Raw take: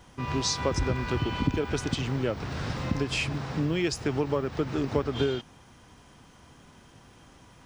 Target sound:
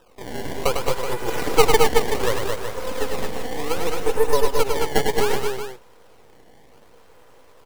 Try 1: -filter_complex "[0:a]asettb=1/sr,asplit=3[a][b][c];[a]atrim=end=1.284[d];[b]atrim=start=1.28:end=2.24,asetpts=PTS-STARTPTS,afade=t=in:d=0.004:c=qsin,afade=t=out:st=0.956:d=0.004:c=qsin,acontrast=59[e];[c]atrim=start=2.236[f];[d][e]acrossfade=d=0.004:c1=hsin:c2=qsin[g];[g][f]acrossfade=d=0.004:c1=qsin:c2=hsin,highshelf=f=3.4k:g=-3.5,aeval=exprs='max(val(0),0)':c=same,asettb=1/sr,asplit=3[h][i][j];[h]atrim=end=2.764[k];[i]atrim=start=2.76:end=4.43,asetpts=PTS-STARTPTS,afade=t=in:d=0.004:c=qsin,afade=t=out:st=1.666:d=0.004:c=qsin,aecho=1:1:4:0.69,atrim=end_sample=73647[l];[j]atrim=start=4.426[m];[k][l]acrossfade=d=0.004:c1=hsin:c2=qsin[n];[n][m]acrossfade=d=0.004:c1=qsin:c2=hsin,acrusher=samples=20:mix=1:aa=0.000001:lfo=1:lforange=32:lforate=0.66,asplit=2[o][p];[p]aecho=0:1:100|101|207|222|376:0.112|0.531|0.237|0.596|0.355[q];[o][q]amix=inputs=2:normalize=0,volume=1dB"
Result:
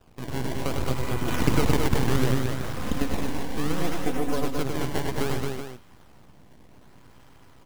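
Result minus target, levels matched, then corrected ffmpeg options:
500 Hz band -4.5 dB
-filter_complex "[0:a]asettb=1/sr,asplit=3[a][b][c];[a]atrim=end=1.284[d];[b]atrim=start=1.28:end=2.24,asetpts=PTS-STARTPTS,afade=t=in:d=0.004:c=qsin,afade=t=out:st=0.956:d=0.004:c=qsin,acontrast=59[e];[c]atrim=start=2.236[f];[d][e]acrossfade=d=0.004:c1=hsin:c2=qsin[g];[g][f]acrossfade=d=0.004:c1=qsin:c2=hsin,highpass=f=470:t=q:w=5.5,highshelf=f=3.4k:g=-3.5,aeval=exprs='max(val(0),0)':c=same,asettb=1/sr,asplit=3[h][i][j];[h]atrim=end=2.764[k];[i]atrim=start=2.76:end=4.43,asetpts=PTS-STARTPTS,afade=t=in:d=0.004:c=qsin,afade=t=out:st=1.666:d=0.004:c=qsin,aecho=1:1:4:0.69,atrim=end_sample=73647[l];[j]atrim=start=4.426[m];[k][l]acrossfade=d=0.004:c1=hsin:c2=qsin[n];[n][m]acrossfade=d=0.004:c1=qsin:c2=hsin,acrusher=samples=20:mix=1:aa=0.000001:lfo=1:lforange=32:lforate=0.66,asplit=2[o][p];[p]aecho=0:1:100|101|207|222|376:0.112|0.531|0.237|0.596|0.355[q];[o][q]amix=inputs=2:normalize=0,volume=1dB"

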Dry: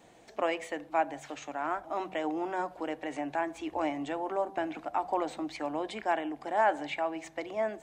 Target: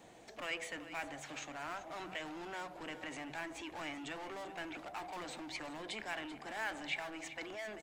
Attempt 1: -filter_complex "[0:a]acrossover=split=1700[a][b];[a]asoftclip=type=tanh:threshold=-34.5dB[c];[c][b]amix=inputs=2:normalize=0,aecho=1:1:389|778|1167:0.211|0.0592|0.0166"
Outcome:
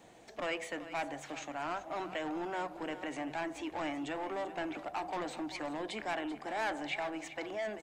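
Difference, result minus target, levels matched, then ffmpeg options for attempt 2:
soft clip: distortion -4 dB
-filter_complex "[0:a]acrossover=split=1700[a][b];[a]asoftclip=type=tanh:threshold=-45.5dB[c];[c][b]amix=inputs=2:normalize=0,aecho=1:1:389|778|1167:0.211|0.0592|0.0166"

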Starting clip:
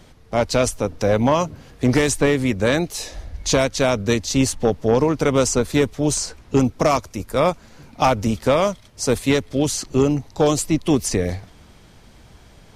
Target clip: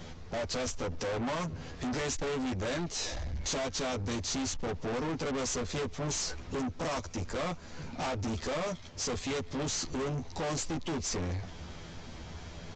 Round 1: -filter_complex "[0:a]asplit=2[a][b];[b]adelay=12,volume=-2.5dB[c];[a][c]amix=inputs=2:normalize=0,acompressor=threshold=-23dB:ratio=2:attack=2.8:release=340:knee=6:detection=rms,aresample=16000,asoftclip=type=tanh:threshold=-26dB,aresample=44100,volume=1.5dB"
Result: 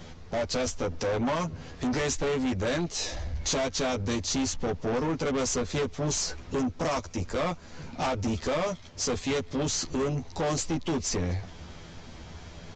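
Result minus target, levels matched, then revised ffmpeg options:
soft clip: distortion -4 dB
-filter_complex "[0:a]asplit=2[a][b];[b]adelay=12,volume=-2.5dB[c];[a][c]amix=inputs=2:normalize=0,acompressor=threshold=-23dB:ratio=2:attack=2.8:release=340:knee=6:detection=rms,aresample=16000,asoftclip=type=tanh:threshold=-33dB,aresample=44100,volume=1.5dB"

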